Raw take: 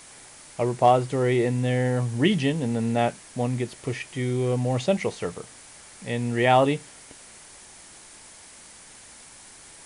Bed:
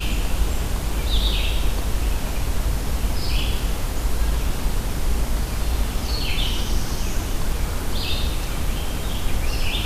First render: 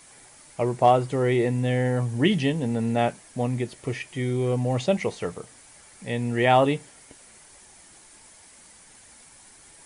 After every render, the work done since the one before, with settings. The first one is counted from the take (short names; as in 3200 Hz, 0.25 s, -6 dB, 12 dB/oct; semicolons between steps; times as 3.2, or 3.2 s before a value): denoiser 6 dB, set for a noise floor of -48 dBFS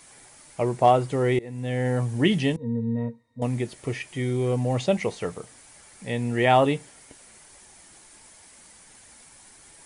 1.39–1.92 fade in, from -24 dB; 2.56–3.42 octave resonator A#, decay 0.14 s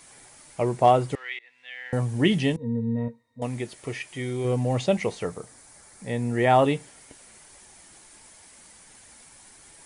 1.15–1.93 Butterworth band-pass 2500 Hz, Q 1.1; 3.08–4.45 low shelf 380 Hz -6 dB; 5.23–6.59 bell 2900 Hz -7 dB 0.79 oct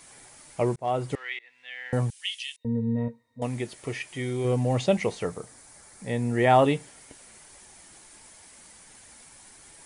0.76–1.18 fade in; 2.1–2.65 Chebyshev high-pass 2800 Hz, order 3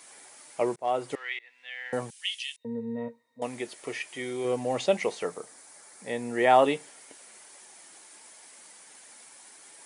HPF 330 Hz 12 dB/oct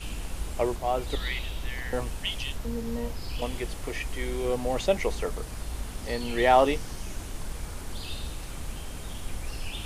add bed -12.5 dB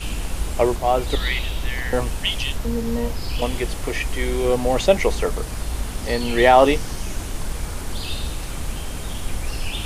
gain +8.5 dB; limiter -2 dBFS, peak gain reduction 3 dB